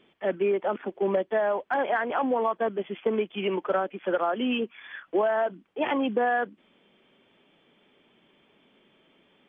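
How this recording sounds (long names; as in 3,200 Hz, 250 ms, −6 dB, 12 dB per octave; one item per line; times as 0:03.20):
background noise floor −65 dBFS
spectral slope −3.0 dB per octave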